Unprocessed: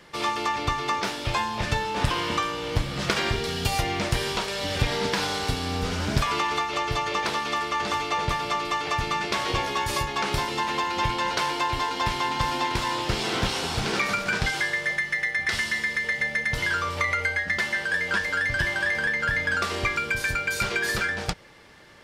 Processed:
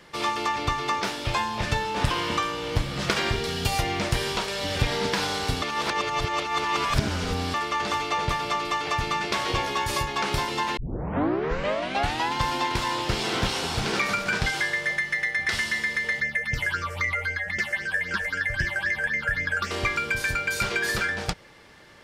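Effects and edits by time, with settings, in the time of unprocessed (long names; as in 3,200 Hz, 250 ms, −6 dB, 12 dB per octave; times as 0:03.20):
0:05.62–0:07.54: reverse
0:10.77: tape start 1.57 s
0:16.20–0:19.71: all-pass phaser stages 6, 3.8 Hz, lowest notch 250–1,100 Hz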